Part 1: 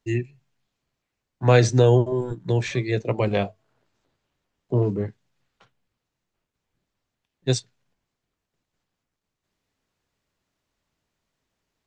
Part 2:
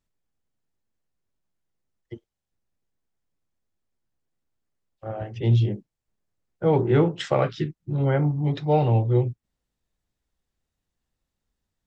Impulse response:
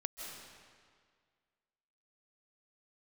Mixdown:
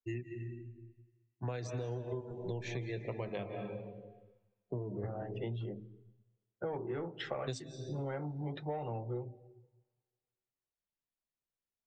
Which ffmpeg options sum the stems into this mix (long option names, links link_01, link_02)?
-filter_complex "[0:a]alimiter=limit=-7.5dB:level=0:latency=1:release=445,volume=-2.5dB,asplit=2[link_01][link_02];[link_02]volume=-9.5dB[link_03];[1:a]asplit=2[link_04][link_05];[link_05]highpass=frequency=720:poles=1,volume=14dB,asoftclip=type=tanh:threshold=-8dB[link_06];[link_04][link_06]amix=inputs=2:normalize=0,lowpass=frequency=1600:poles=1,volume=-6dB,volume=-10dB,asplit=3[link_07][link_08][link_09];[link_08]volume=-19.5dB[link_10];[link_09]apad=whole_len=523349[link_11];[link_01][link_11]sidechaingate=range=-13dB:threshold=-49dB:ratio=16:detection=peak[link_12];[2:a]atrim=start_sample=2205[link_13];[link_03][link_10]amix=inputs=2:normalize=0[link_14];[link_14][link_13]afir=irnorm=-1:irlink=0[link_15];[link_12][link_07][link_15]amix=inputs=3:normalize=0,bandreject=frequency=52.57:width_type=h:width=4,bandreject=frequency=105.14:width_type=h:width=4,bandreject=frequency=157.71:width_type=h:width=4,bandreject=frequency=210.28:width_type=h:width=4,bandreject=frequency=262.85:width_type=h:width=4,bandreject=frequency=315.42:width_type=h:width=4,afftdn=noise_reduction=16:noise_floor=-50,acompressor=threshold=-35dB:ratio=16"